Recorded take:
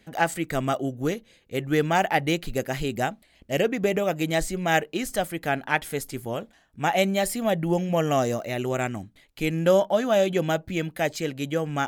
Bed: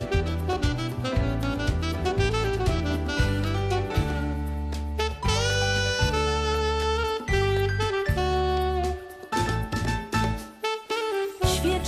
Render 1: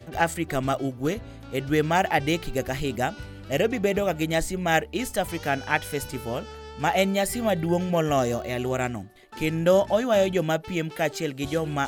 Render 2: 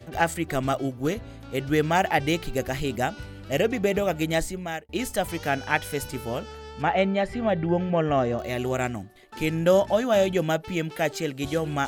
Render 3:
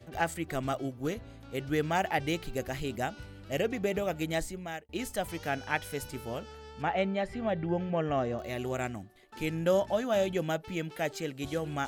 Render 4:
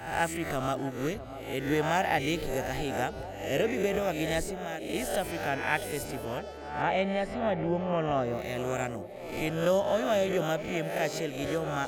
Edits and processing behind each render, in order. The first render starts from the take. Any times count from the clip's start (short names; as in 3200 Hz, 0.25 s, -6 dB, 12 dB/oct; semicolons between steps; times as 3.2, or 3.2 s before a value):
add bed -16 dB
4.37–4.89 fade out; 6.82–8.39 LPF 2600 Hz
gain -7 dB
spectral swells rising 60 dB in 0.66 s; narrowing echo 0.647 s, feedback 78%, band-pass 500 Hz, level -11.5 dB